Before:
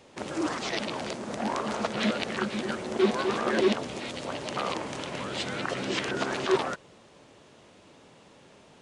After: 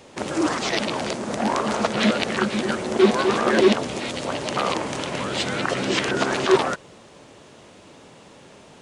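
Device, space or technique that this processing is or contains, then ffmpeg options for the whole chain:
exciter from parts: -filter_complex "[0:a]asplit=2[a][b];[b]highpass=4.9k,asoftclip=type=tanh:threshold=-33dB,volume=-10dB[c];[a][c]amix=inputs=2:normalize=0,volume=7.5dB"

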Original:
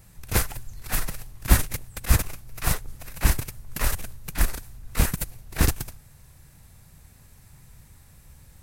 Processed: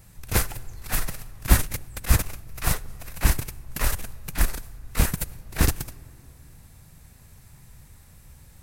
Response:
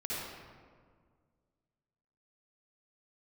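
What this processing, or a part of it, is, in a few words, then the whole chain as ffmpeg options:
ducked reverb: -filter_complex "[0:a]asplit=3[a][b][c];[1:a]atrim=start_sample=2205[d];[b][d]afir=irnorm=-1:irlink=0[e];[c]apad=whole_len=380453[f];[e][f]sidechaincompress=threshold=-27dB:ratio=8:attack=37:release=1240,volume=-14.5dB[g];[a][g]amix=inputs=2:normalize=0"

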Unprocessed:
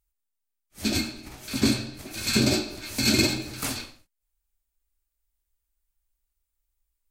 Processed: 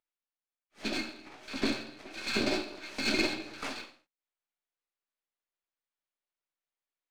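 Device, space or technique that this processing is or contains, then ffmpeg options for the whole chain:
crystal radio: -af "highpass=350,lowpass=3.3k,aeval=exprs='if(lt(val(0),0),0.447*val(0),val(0))':c=same"

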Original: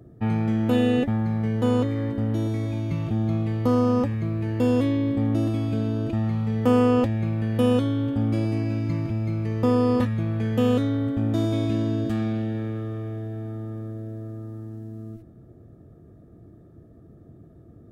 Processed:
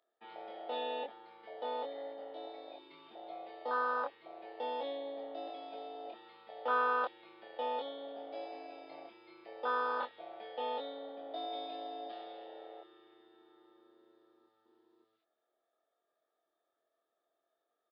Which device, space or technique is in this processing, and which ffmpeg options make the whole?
musical greeting card: -filter_complex "[0:a]afwtdn=0.0631,asplit=2[a][b];[b]adelay=25,volume=-2.5dB[c];[a][c]amix=inputs=2:normalize=0,aresample=11025,aresample=44100,highpass=f=690:w=0.5412,highpass=f=690:w=1.3066,equalizer=f=3.5k:t=o:w=0.43:g=11,volume=-1.5dB"

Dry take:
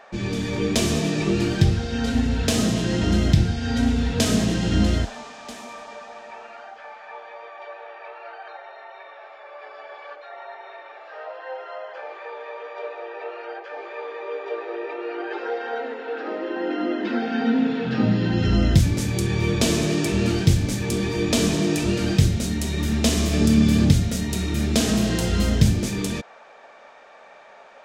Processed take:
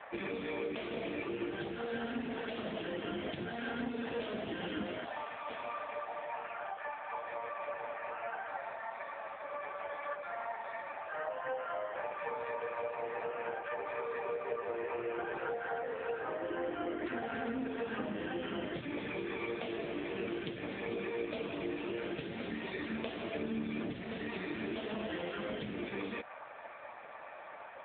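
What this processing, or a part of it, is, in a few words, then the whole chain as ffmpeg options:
voicemail: -af "highpass=430,lowpass=3.1k,acompressor=threshold=-35dB:ratio=10,volume=3dB" -ar 8000 -c:a libopencore_amrnb -b:a 5900

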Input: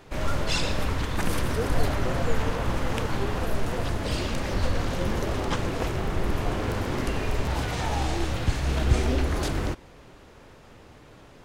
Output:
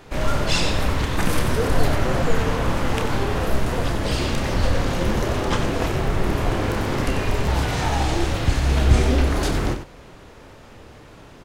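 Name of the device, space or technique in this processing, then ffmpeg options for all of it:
slapback doubling: -filter_complex "[0:a]asplit=3[a][b][c];[b]adelay=29,volume=-8dB[d];[c]adelay=93,volume=-9dB[e];[a][d][e]amix=inputs=3:normalize=0,volume=4.5dB"

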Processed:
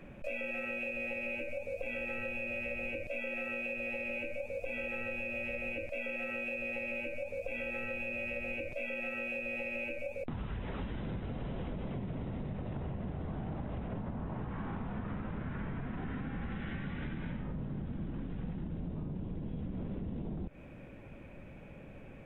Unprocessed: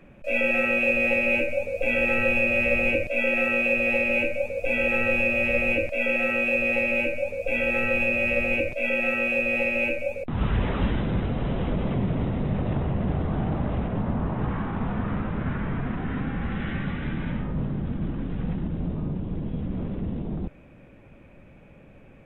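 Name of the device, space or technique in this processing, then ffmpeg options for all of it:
serial compression, peaks first: -af "bandreject=f=1.2k:w=24,acompressor=threshold=-31dB:ratio=6,acompressor=threshold=-37dB:ratio=2.5"

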